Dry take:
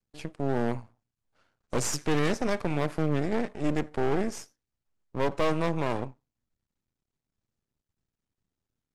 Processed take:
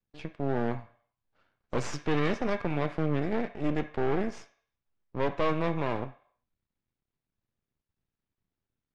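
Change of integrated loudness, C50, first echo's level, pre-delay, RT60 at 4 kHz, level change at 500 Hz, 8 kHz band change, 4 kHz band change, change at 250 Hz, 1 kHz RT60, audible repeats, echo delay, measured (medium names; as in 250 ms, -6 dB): -1.5 dB, 13.0 dB, no echo, 3 ms, 0.65 s, -1.5 dB, under -10 dB, -4.0 dB, -1.5 dB, 0.60 s, no echo, no echo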